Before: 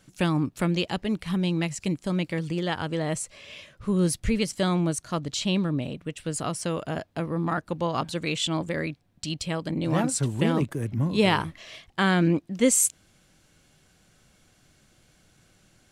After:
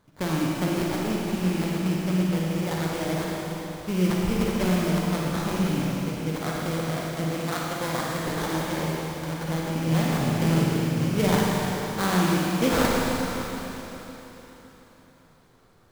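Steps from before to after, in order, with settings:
sample-rate reduction 2,700 Hz, jitter 20%
four-comb reverb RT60 3.9 s, DRR −4 dB
level −4.5 dB

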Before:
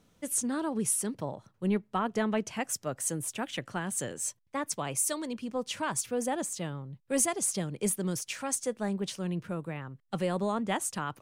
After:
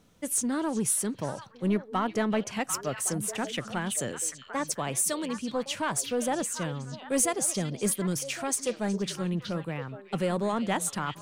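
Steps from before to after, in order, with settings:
in parallel at −7 dB: gain into a clipping stage and back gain 30 dB
on the sum: echo through a band-pass that steps 371 ms, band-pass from 3,600 Hz, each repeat −1.4 octaves, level −4.5 dB

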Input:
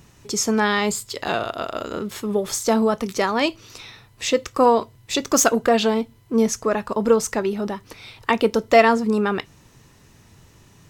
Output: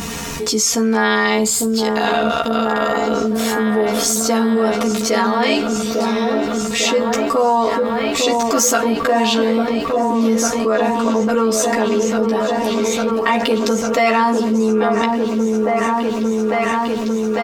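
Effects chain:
on a send: echo whose low-pass opens from repeat to repeat 531 ms, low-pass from 750 Hz, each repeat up 1 octave, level −6 dB
on the sum: time stretch by overlap-add 1.6×, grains 23 ms
low-shelf EQ 120 Hz −11 dB
double-tracking delay 14 ms −2.5 dB
envelope flattener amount 70%
level −2.5 dB

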